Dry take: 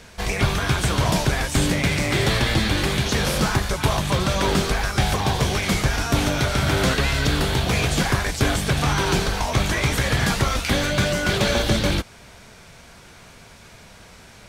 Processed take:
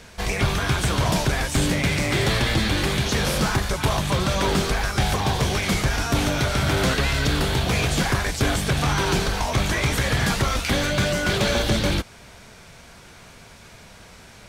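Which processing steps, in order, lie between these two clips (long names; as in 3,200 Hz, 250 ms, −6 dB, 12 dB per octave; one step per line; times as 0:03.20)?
soft clipping −11 dBFS, distortion −22 dB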